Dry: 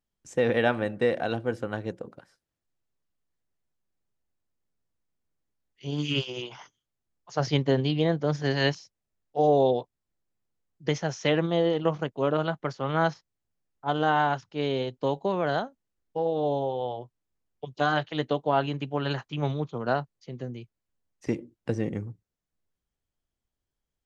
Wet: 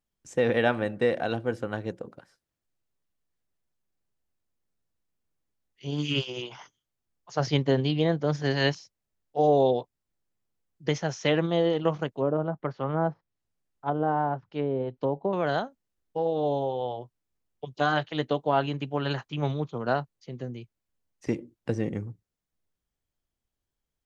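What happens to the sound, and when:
12.12–15.33 s: low-pass that closes with the level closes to 830 Hz, closed at -23.5 dBFS

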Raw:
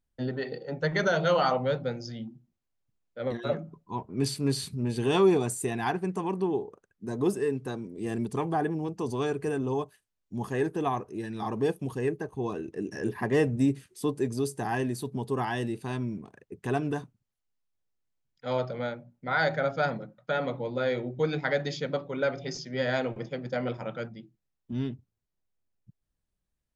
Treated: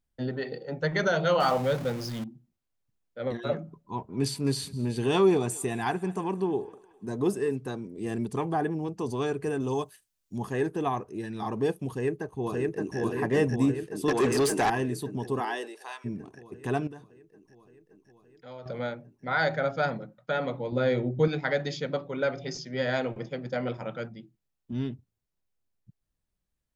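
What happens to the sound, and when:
1.40–2.24 s: jump at every zero crossing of -35 dBFS
3.64–7.57 s: thinning echo 205 ms, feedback 56%, level -21 dB
9.60–10.38 s: treble shelf 3.2 kHz +11.5 dB
11.89–12.98 s: echo throw 570 ms, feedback 70%, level -1 dB
14.08–14.70 s: overdrive pedal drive 23 dB, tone 5.7 kHz, clips at -15.5 dBFS
15.39–16.04 s: high-pass 230 Hz -> 920 Hz 24 dB/octave
16.87–18.66 s: compression 2:1, threshold -52 dBFS
20.72–21.28 s: bass shelf 330 Hz +8.5 dB

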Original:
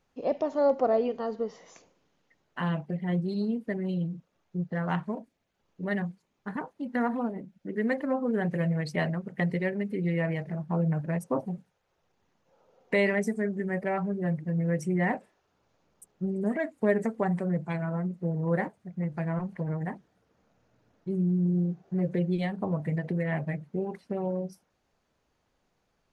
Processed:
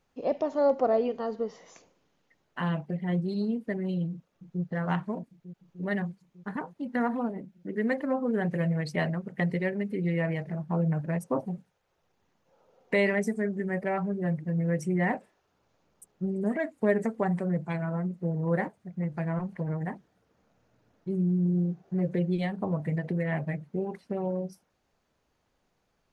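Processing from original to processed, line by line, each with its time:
4.11–4.63 s: echo throw 300 ms, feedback 75%, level -8.5 dB

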